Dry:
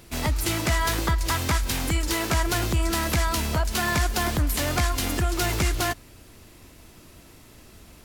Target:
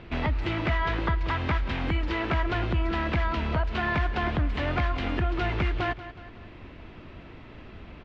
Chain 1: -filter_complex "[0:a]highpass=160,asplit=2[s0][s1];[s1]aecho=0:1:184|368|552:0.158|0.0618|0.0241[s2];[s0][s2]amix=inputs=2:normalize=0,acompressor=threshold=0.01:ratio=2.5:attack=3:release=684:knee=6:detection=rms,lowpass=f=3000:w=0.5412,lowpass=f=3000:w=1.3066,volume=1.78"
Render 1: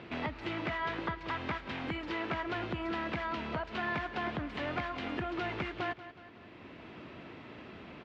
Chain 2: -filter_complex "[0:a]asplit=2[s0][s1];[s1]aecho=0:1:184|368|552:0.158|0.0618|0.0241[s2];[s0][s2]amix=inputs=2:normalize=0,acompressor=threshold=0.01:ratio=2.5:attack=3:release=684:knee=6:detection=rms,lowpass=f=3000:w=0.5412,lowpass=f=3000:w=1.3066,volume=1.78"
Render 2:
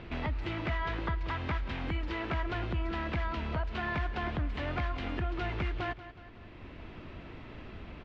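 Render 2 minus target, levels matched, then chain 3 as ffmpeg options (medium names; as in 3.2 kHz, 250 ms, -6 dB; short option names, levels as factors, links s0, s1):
compression: peak gain reduction +7 dB
-filter_complex "[0:a]asplit=2[s0][s1];[s1]aecho=0:1:184|368|552:0.158|0.0618|0.0241[s2];[s0][s2]amix=inputs=2:normalize=0,acompressor=threshold=0.0376:ratio=2.5:attack=3:release=684:knee=6:detection=rms,lowpass=f=3000:w=0.5412,lowpass=f=3000:w=1.3066,volume=1.78"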